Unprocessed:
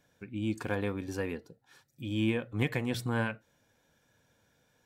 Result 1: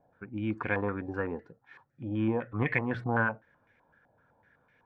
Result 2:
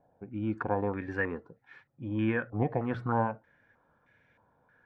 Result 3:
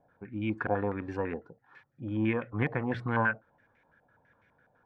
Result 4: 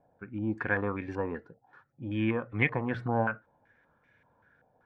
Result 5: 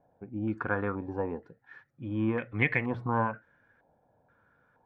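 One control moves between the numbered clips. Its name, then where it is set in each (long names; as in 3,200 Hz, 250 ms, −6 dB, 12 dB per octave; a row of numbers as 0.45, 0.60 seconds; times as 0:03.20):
low-pass on a step sequencer, speed: 7.9, 3.2, 12, 5.2, 2.1 Hertz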